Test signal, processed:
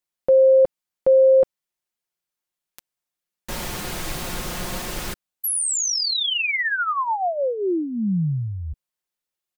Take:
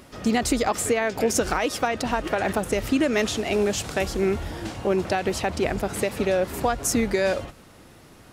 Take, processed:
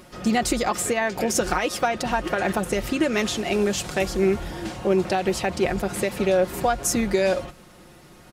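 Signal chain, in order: comb 5.6 ms, depth 48%

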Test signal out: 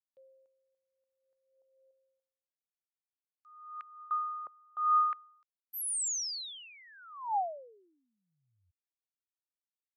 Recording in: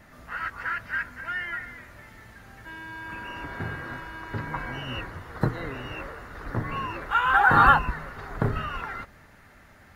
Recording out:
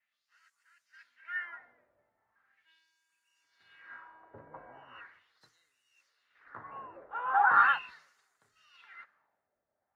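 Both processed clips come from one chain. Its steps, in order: LFO band-pass sine 0.39 Hz 560–7900 Hz; three-band expander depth 70%; gain -8 dB

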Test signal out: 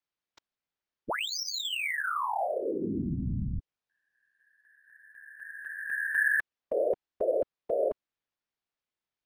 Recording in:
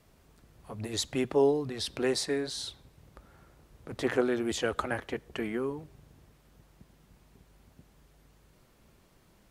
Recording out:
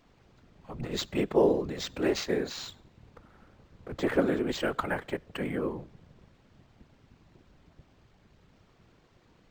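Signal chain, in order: whisperiser; decimation joined by straight lines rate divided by 4×; gain +1 dB

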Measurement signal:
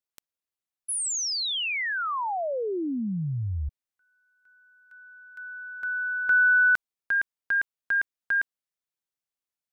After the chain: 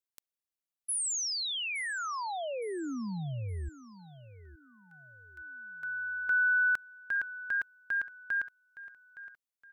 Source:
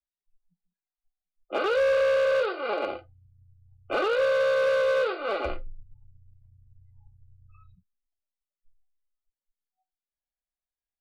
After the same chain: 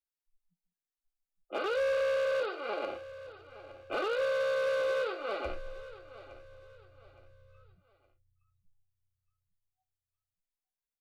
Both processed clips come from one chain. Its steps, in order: high shelf 5700 Hz +5 dB; feedback echo 0.866 s, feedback 34%, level -16 dB; gain -7 dB

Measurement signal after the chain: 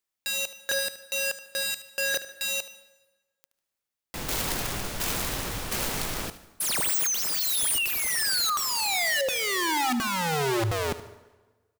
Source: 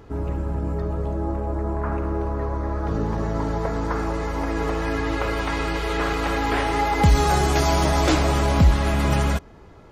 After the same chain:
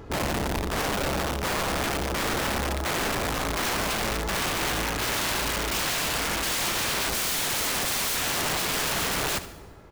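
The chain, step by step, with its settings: tremolo saw down 1.4 Hz, depth 60%; wrapped overs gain 25.5 dB; on a send: feedback echo 74 ms, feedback 32%, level -14 dB; on the sum: plate-style reverb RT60 1.3 s, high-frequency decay 0.75×, pre-delay 90 ms, DRR 18.5 dB; gain +3 dB

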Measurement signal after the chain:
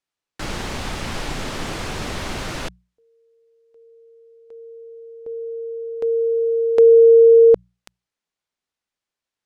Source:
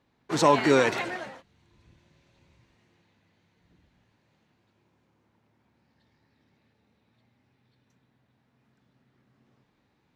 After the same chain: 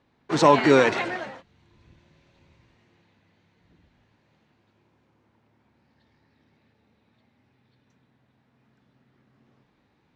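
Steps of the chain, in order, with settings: air absorption 68 m; notches 60/120/180 Hz; gain +4 dB

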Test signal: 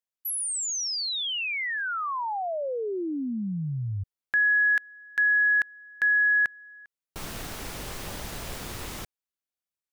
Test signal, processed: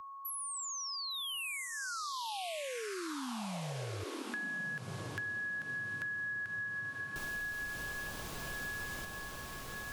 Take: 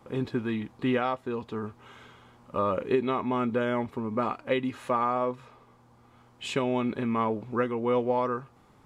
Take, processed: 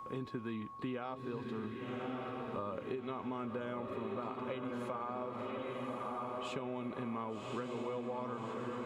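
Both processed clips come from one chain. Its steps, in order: whine 1100 Hz -41 dBFS; diffused feedback echo 1.152 s, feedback 49%, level -4 dB; compressor, threshold -28 dBFS; dynamic EQ 1900 Hz, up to -7 dB, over -52 dBFS, Q 7.2; three-band squash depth 40%; gain -8.5 dB

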